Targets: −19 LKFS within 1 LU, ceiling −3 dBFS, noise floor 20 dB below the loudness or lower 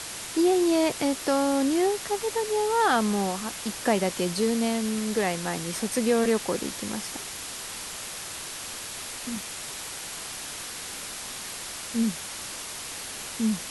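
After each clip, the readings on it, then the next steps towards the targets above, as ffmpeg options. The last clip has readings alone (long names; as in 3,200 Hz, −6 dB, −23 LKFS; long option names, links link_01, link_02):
background noise floor −37 dBFS; target noise floor −48 dBFS; integrated loudness −27.5 LKFS; sample peak −11.5 dBFS; target loudness −19.0 LKFS
→ -af "afftdn=noise_reduction=11:noise_floor=-37"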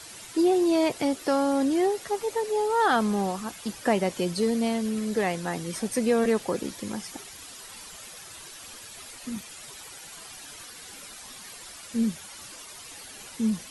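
background noise floor −44 dBFS; target noise floor −47 dBFS
→ -af "afftdn=noise_reduction=6:noise_floor=-44"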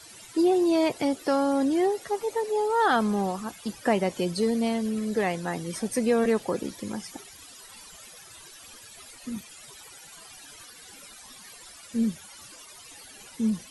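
background noise floor −48 dBFS; integrated loudness −26.5 LKFS; sample peak −12.0 dBFS; target loudness −19.0 LKFS
→ -af "volume=7.5dB"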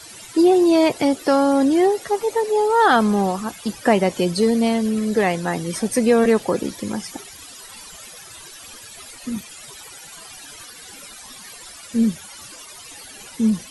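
integrated loudness −19.0 LKFS; sample peak −4.5 dBFS; background noise floor −41 dBFS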